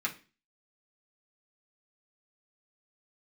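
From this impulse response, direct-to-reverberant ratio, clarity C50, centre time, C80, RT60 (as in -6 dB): -4.0 dB, 14.0 dB, 10 ms, 20.5 dB, 0.35 s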